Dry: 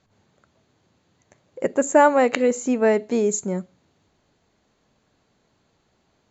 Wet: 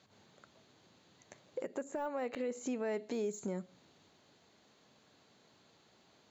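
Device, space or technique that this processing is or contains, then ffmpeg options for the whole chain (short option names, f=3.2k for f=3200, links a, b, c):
broadcast voice chain: -filter_complex "[0:a]highpass=f=160:p=1,asettb=1/sr,asplit=3[a][b][c];[a]atrim=end=1.814[d];[b]atrim=start=1.81:end=2.59,asetpts=PTS-STARTPTS,afade=t=in:d=0.004:c=qsin,afade=t=out:st=0.776:d=0.004:c=qsin,highshelf=f=5k:g=-8.5[e];[c]atrim=start=2.586[f];[d][e]acrossfade=d=0.004:c1=hsin:c2=qsin[g];[g][f]acrossfade=d=0.004:c1=qsin:c2=hsin,highpass=73,deesser=0.9,acompressor=threshold=-31dB:ratio=5,equalizer=f=3.9k:t=o:w=0.97:g=5,alimiter=level_in=4.5dB:limit=-24dB:level=0:latency=1:release=169,volume=-4.5dB"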